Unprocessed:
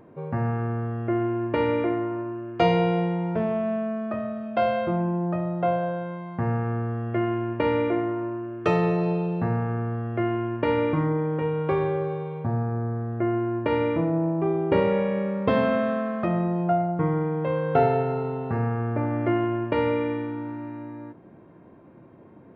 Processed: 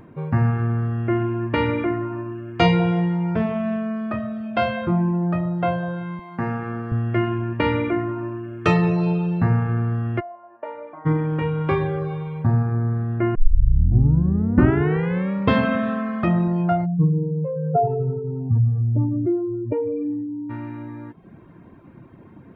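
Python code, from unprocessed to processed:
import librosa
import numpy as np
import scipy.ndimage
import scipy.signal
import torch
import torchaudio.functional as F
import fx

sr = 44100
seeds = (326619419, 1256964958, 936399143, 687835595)

y = fx.highpass(x, sr, hz=220.0, slope=12, at=(6.19, 6.92))
y = fx.ladder_bandpass(y, sr, hz=690.0, resonance_pct=75, at=(10.19, 11.05), fade=0.02)
y = fx.spec_expand(y, sr, power=2.8, at=(16.85, 20.49), fade=0.02)
y = fx.edit(y, sr, fx.tape_start(start_s=13.35, length_s=1.97), tone=tone)
y = fx.peak_eq(y, sr, hz=550.0, db=-9.0, octaves=1.5)
y = fx.dereverb_blind(y, sr, rt60_s=0.61)
y = fx.low_shelf(y, sr, hz=60.0, db=7.5)
y = F.gain(torch.from_numpy(y), 8.5).numpy()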